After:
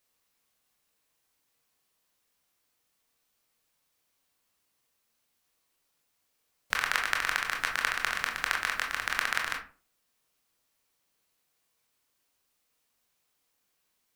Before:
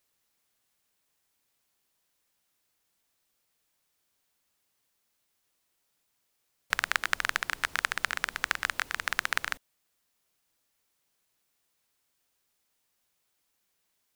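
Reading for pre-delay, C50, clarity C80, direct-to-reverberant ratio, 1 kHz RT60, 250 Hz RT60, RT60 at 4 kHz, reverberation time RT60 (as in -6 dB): 20 ms, 7.5 dB, 14.0 dB, 0.5 dB, 0.35 s, 0.45 s, 0.25 s, 0.40 s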